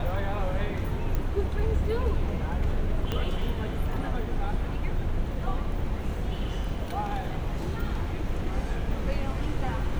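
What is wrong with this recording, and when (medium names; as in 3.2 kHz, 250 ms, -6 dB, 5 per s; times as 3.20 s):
1.15 s: pop -17 dBFS
3.12 s: pop -15 dBFS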